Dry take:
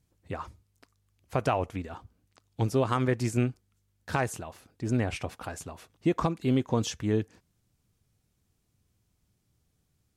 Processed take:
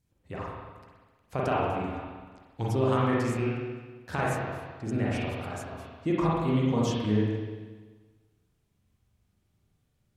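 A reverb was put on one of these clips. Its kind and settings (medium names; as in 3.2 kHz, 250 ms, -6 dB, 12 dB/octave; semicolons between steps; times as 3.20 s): spring tank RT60 1.4 s, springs 38/43 ms, chirp 25 ms, DRR -5.5 dB; trim -5 dB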